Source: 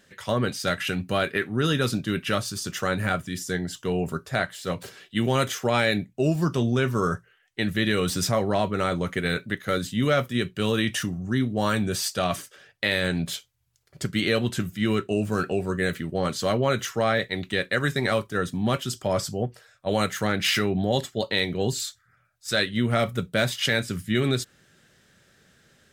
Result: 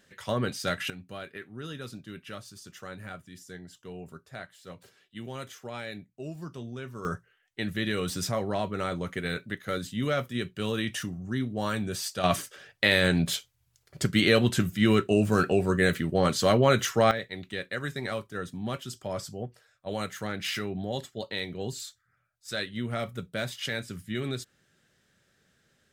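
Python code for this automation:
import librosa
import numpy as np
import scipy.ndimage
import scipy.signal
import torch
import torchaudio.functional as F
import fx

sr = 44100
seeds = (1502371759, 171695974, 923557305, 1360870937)

y = fx.gain(x, sr, db=fx.steps((0.0, -4.0), (0.9, -16.0), (7.05, -6.0), (12.24, 2.0), (17.11, -9.0)))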